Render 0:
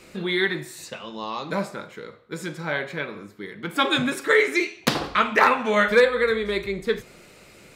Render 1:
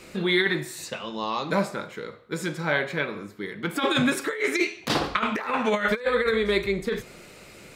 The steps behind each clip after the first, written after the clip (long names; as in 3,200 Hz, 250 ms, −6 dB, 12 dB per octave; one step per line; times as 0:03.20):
compressor whose output falls as the input rises −22 dBFS, ratio −0.5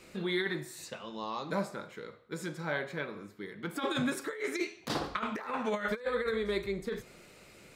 dynamic equaliser 2,600 Hz, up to −5 dB, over −42 dBFS, Q 1.5
level −8.5 dB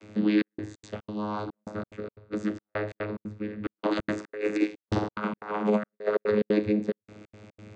channel vocoder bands 16, saw 105 Hz
gate pattern "xxxxx..xx.xx." 180 BPM −60 dB
level +9 dB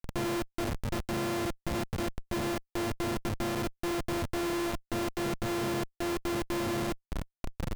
samples sorted by size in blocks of 128 samples
comparator with hysteresis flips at −41.5 dBFS
level −1 dB